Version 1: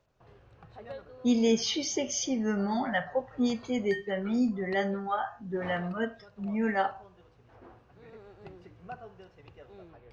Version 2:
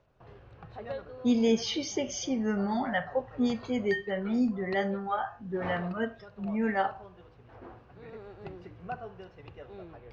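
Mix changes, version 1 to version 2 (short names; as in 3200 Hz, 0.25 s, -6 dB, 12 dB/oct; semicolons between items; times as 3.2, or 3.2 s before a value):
background +5.0 dB; master: add air absorption 79 m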